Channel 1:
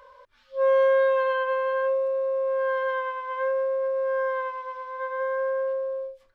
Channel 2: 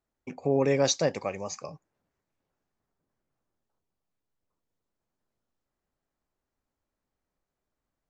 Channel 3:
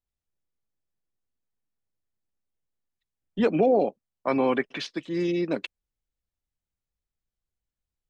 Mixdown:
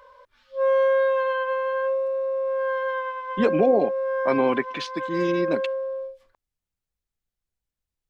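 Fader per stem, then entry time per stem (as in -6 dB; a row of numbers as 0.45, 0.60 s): 0.0 dB, off, +1.0 dB; 0.00 s, off, 0.00 s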